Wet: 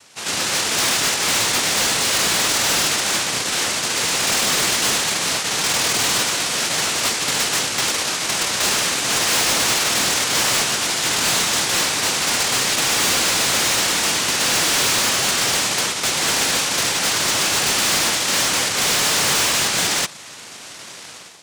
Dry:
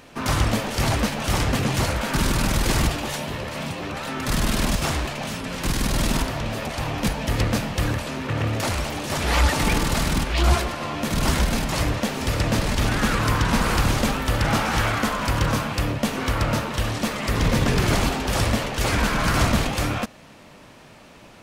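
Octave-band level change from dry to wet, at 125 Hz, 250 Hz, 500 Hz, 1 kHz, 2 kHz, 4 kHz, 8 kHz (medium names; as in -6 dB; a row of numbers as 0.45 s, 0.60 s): -12.0 dB, -6.0 dB, 0.0 dB, +2.0 dB, +6.5 dB, +11.5 dB, +14.5 dB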